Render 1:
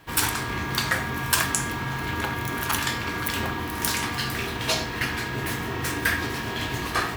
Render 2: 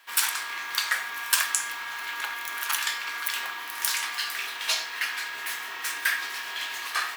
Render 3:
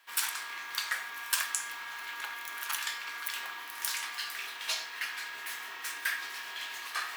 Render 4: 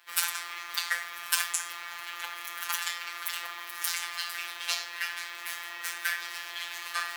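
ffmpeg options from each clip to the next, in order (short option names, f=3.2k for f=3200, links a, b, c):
-af "highpass=1.3k"
-af "areverse,acompressor=mode=upward:threshold=-31dB:ratio=2.5,areverse,aeval=exprs='0.891*(cos(1*acos(clip(val(0)/0.891,-1,1)))-cos(1*PI/2))+0.00708*(cos(6*acos(clip(val(0)/0.891,-1,1)))-cos(6*PI/2))':c=same,volume=-7dB"
-filter_complex "[0:a]afftfilt=real='hypot(re,im)*cos(PI*b)':imag='0':win_size=1024:overlap=0.75,acrossover=split=300|6700[a][b][c];[a]aeval=exprs='(mod(4470*val(0)+1,2)-1)/4470':c=same[d];[d][b][c]amix=inputs=3:normalize=0,volume=6dB"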